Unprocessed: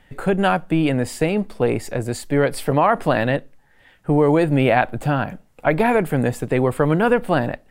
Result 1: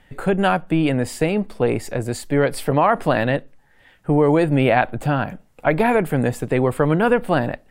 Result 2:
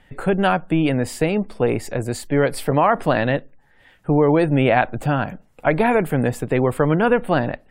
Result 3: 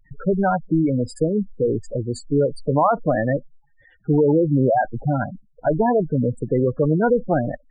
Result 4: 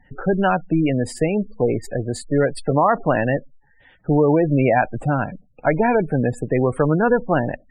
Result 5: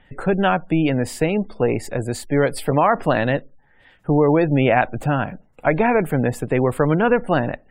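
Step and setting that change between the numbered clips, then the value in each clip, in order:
spectral gate, under each frame's peak: -60, -45, -10, -20, -35 dB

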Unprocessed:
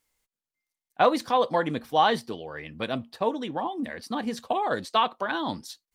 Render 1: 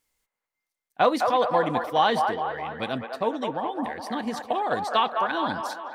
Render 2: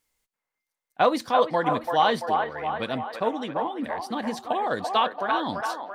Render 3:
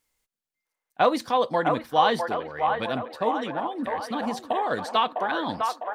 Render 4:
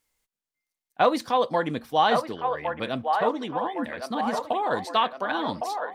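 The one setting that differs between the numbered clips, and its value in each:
band-limited delay, time: 0.209, 0.338, 0.654, 1.11 s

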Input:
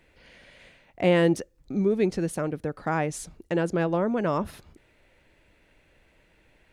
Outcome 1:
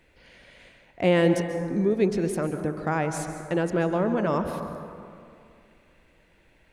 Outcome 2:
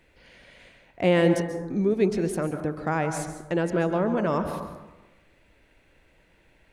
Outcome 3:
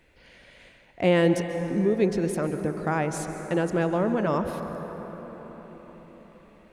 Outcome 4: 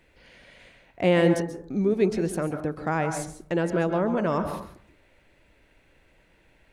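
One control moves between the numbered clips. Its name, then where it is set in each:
plate-style reverb, RT60: 2.4, 1.1, 5.3, 0.51 s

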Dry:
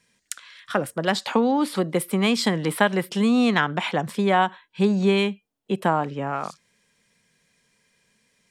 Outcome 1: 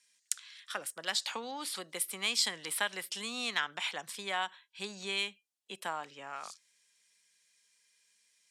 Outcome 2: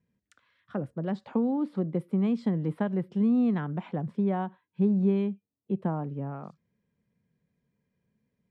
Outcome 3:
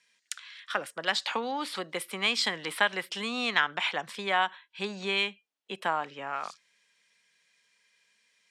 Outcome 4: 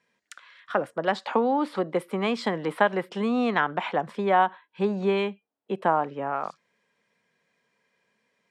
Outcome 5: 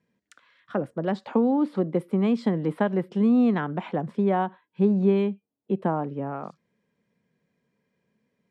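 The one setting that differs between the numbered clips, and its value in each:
band-pass, frequency: 7600, 100, 3000, 780, 260 Hz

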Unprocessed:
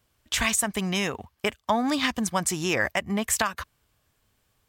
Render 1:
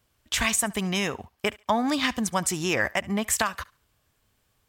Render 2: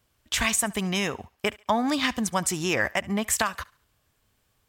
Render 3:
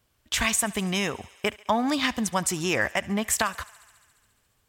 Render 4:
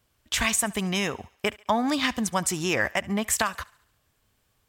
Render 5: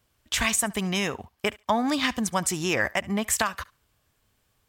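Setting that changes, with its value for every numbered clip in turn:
thinning echo, feedback: 24, 36, 79, 53, 15%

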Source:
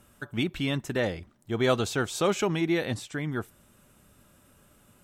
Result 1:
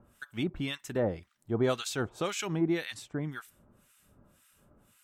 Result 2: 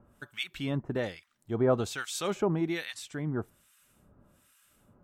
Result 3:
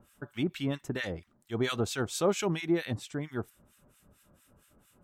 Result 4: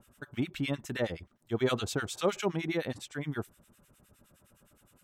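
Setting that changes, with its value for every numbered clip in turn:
harmonic tremolo, rate: 1.9, 1.2, 4.4, 9.7 Hz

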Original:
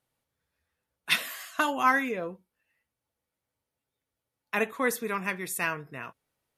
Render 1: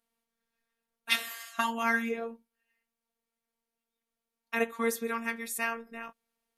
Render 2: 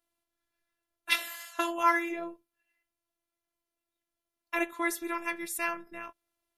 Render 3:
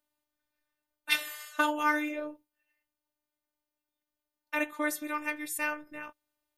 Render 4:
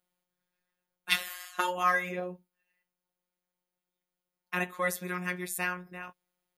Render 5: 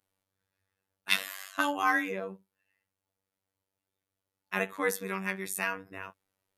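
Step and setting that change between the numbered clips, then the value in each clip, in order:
robotiser, frequency: 230, 340, 300, 180, 96 Hz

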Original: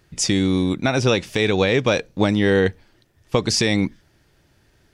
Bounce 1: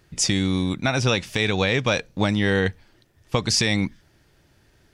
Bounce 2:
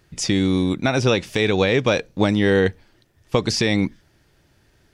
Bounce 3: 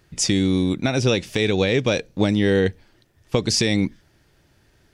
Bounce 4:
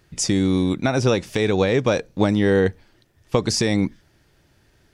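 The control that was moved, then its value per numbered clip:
dynamic EQ, frequency: 380, 8400, 1100, 2900 Hz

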